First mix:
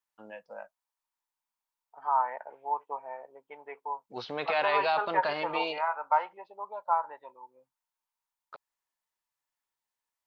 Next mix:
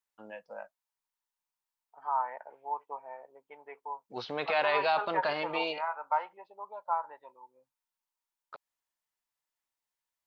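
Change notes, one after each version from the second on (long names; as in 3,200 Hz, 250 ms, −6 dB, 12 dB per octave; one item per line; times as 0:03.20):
second voice −4.0 dB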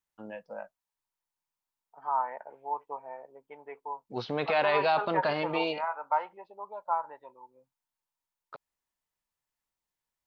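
master: add low-shelf EQ 330 Hz +12 dB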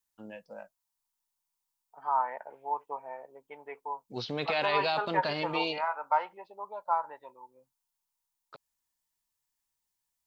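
first voice: add parametric band 1,100 Hz −7.5 dB 2.5 octaves
master: add high-shelf EQ 2,700 Hz +9 dB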